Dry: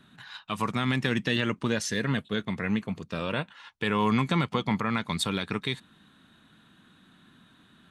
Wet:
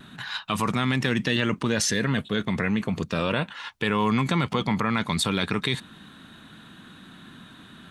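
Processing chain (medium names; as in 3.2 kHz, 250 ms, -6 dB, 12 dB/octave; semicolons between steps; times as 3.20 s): in parallel at +1.5 dB: compressor with a negative ratio -35 dBFS, ratio -1; on the sum: vibrato 0.34 Hz 6.8 cents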